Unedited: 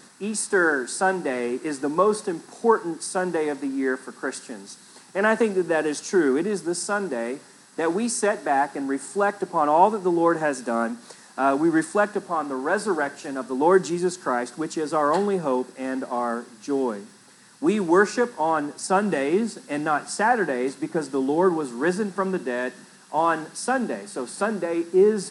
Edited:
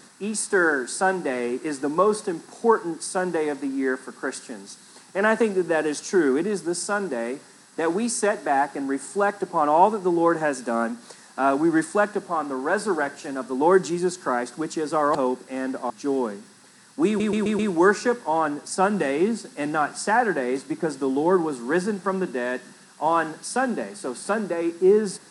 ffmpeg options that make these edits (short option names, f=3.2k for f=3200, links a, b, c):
-filter_complex "[0:a]asplit=7[a][b][c][d][e][f][g];[a]atrim=end=15.152[h];[b]atrim=start=15.428:end=16.182[i];[c]atrim=start=16.538:end=17.842[j];[d]atrim=start=17.708:end=17.842[k];[e]atrim=start=17.708:end=17.842[l];[f]atrim=start=17.708:end=17.842[m];[g]atrim=start=17.708[n];[h][i]acrossfade=d=0.004:c1=hsin:c2=hsin[o];[o][j]acrossfade=d=0.004:c1=hsin:c2=hsin[p];[p][k]acrossfade=d=0.004:c1=hsin:c2=hsin[q];[q][l]acrossfade=d=0.004:c1=hsin:c2=hsin[r];[r][m]acrossfade=d=0.004:c1=hsin:c2=hsin[s];[s][n]acrossfade=d=0.004:c1=hsin:c2=hsin"